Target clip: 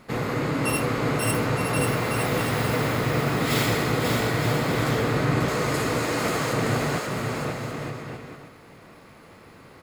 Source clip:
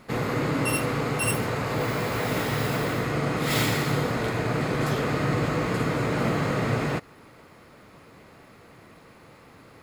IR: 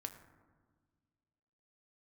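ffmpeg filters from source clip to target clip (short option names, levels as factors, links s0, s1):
-filter_complex "[0:a]asettb=1/sr,asplit=3[s0][s1][s2];[s0]atrim=end=5.484[s3];[s1]atrim=start=5.48:end=6.53,asetpts=PTS-STARTPTS,afade=t=in:d=0.004:c=qsin,afade=t=out:st=1.046:d=0.004:c=qsin,bass=f=250:g=-13,treble=f=4000:g=10[s4];[s2]atrim=start=6.526[s5];[s3][s4]acrossfade=d=0.004:c1=hsin:c2=qsin[s6];[s6][s5]acrossfade=d=0.004:c1=qsin:c2=hsin,aecho=1:1:540|918|1183|1368|1497:0.631|0.398|0.251|0.158|0.1"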